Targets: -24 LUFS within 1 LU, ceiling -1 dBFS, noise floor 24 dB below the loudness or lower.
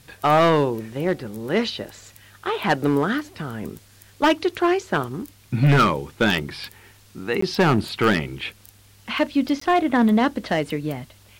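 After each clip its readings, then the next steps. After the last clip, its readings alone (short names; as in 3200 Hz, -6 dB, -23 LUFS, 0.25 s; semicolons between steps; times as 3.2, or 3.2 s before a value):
clipped 1.2%; flat tops at -11.5 dBFS; dropouts 2; longest dropout 14 ms; loudness -21.5 LUFS; peak -11.5 dBFS; loudness target -24.0 LUFS
-> clip repair -11.5 dBFS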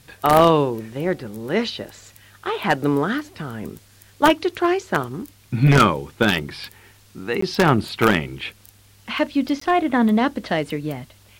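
clipped 0.0%; dropouts 2; longest dropout 14 ms
-> interpolate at 7.41/9.6, 14 ms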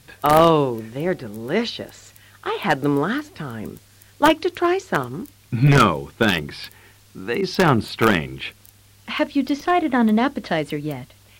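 dropouts 0; loudness -20.5 LUFS; peak -2.5 dBFS; loudness target -24.0 LUFS
-> gain -3.5 dB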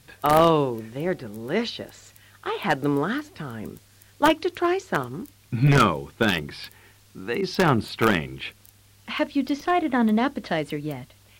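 loudness -24.0 LUFS; peak -6.0 dBFS; noise floor -55 dBFS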